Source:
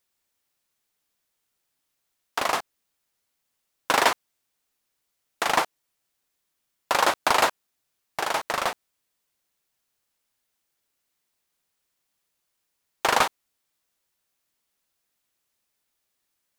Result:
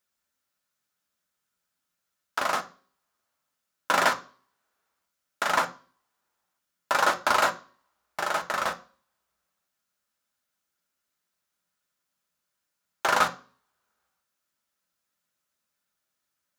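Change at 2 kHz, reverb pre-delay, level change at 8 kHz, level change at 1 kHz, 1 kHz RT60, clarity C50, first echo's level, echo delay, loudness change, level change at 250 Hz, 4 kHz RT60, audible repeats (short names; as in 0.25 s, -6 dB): -0.5 dB, 3 ms, -4.0 dB, -1.5 dB, 0.40 s, 16.5 dB, none, none, -1.5 dB, -3.0 dB, 0.40 s, none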